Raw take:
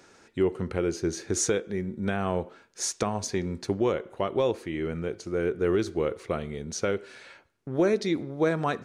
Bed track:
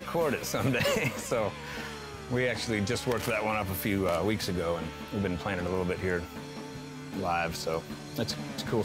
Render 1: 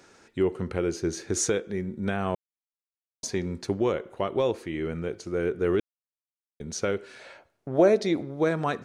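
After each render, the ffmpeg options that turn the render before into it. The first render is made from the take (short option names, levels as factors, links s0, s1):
-filter_complex "[0:a]asettb=1/sr,asplit=3[s0][s1][s2];[s0]atrim=end=7.194[s3];[s1]atrim=start=7.19:end=8.21,asetpts=PTS-STARTPTS,afade=t=in:d=0.004:c=qsin,afade=t=out:st=1.016:d=0.004:c=qsin,equalizer=f=650:w=1.9:g=10.5[s4];[s2]atrim=start=8.206[s5];[s3][s4]acrossfade=d=0.004:c1=hsin:c2=qsin[s6];[s6][s5]acrossfade=d=0.004:c1=qsin:c2=hsin,asplit=5[s7][s8][s9][s10][s11];[s7]atrim=end=2.35,asetpts=PTS-STARTPTS,afade=t=out:st=2.346:d=0.004:c=hsin[s12];[s8]atrim=start=2.35:end=3.23,asetpts=PTS-STARTPTS,volume=0[s13];[s9]atrim=start=3.23:end=5.8,asetpts=PTS-STARTPTS,afade=t=in:d=0.004:c=hsin,afade=t=out:st=2.566:d=0.004:c=hsin[s14];[s10]atrim=start=5.8:end=6.6,asetpts=PTS-STARTPTS,volume=0[s15];[s11]atrim=start=6.6,asetpts=PTS-STARTPTS,afade=t=in:d=0.004:c=hsin[s16];[s12][s13][s14][s15][s16]concat=n=5:v=0:a=1"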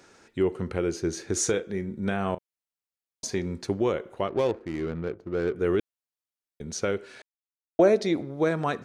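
-filter_complex "[0:a]asettb=1/sr,asplit=3[s0][s1][s2];[s0]atrim=end=1.404[s3];[s1]atrim=start=1.4:end=3.42,asetpts=PTS-STARTPTS,afade=t=in:d=0.004:c=qsin,afade=t=out:st=2.016:d=0.004:c=qsin,asplit=2[s4][s5];[s5]adelay=36,volume=0.2[s6];[s4][s6]amix=inputs=2:normalize=0,atrim=end_sample=89082[s7];[s2]atrim=start=3.416[s8];[s3][s7]acrossfade=d=0.004:c1=hsin:c2=qsin[s9];[s9][s8]acrossfade=d=0.004:c1=qsin:c2=hsin,asettb=1/sr,asplit=3[s10][s11][s12];[s10]atrim=end=4.284[s13];[s11]atrim=start=4.28:end=5.56,asetpts=PTS-STARTPTS,afade=t=in:d=0.004:c=qsin,afade=t=out:st=1.276:d=0.004:c=qsin,adynamicsmooth=sensitivity=5:basefreq=540[s14];[s12]atrim=start=5.556[s15];[s13][s14]acrossfade=d=0.004:c1=hsin:c2=qsin[s16];[s16][s15]acrossfade=d=0.004:c1=qsin:c2=hsin,asplit=3[s17][s18][s19];[s17]atrim=end=7.22,asetpts=PTS-STARTPTS,afade=t=out:st=7.216:d=0.004:c=hsin[s20];[s18]atrim=start=7.22:end=7.79,asetpts=PTS-STARTPTS,volume=0[s21];[s19]atrim=start=7.79,asetpts=PTS-STARTPTS,afade=t=in:d=0.004:c=hsin[s22];[s20][s21][s22]concat=n=3:v=0:a=1"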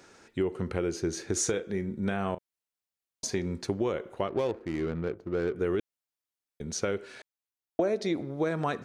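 -af "acompressor=threshold=0.0562:ratio=4"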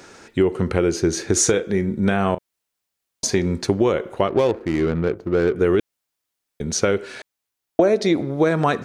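-af "volume=3.55"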